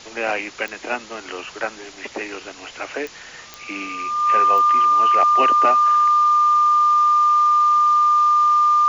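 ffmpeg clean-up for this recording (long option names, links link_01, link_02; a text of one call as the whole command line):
ffmpeg -i in.wav -af "adeclick=threshold=4,bandreject=frequency=1200:width=30,afwtdn=0.013" out.wav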